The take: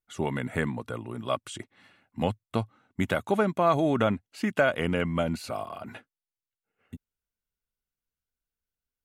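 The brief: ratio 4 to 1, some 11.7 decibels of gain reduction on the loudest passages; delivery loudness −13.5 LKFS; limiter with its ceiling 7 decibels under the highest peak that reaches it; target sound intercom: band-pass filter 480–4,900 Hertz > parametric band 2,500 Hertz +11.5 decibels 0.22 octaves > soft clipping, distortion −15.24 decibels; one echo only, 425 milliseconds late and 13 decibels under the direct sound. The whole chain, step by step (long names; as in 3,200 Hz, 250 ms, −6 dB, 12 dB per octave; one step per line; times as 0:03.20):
downward compressor 4 to 1, threshold −33 dBFS
brickwall limiter −25 dBFS
band-pass filter 480–4,900 Hz
parametric band 2,500 Hz +11.5 dB 0.22 octaves
single-tap delay 425 ms −13 dB
soft clipping −31.5 dBFS
level +30 dB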